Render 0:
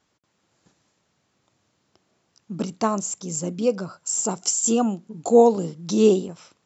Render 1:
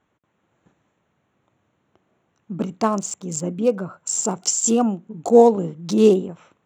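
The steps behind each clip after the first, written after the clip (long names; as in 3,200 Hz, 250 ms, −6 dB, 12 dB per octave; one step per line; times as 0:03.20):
adaptive Wiener filter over 9 samples
level +2.5 dB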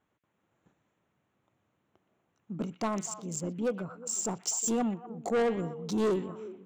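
soft clipping −15.5 dBFS, distortion −8 dB
echo through a band-pass that steps 121 ms, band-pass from 2,500 Hz, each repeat −1.4 octaves, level −8 dB
level −8 dB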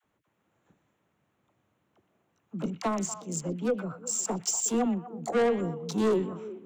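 all-pass dispersion lows, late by 44 ms, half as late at 570 Hz
level +2.5 dB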